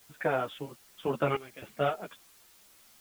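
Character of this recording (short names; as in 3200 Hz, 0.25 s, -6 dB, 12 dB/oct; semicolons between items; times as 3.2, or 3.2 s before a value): random-step tremolo 3.7 Hz, depth 85%; a quantiser's noise floor 10-bit, dither triangular; a shimmering, thickened sound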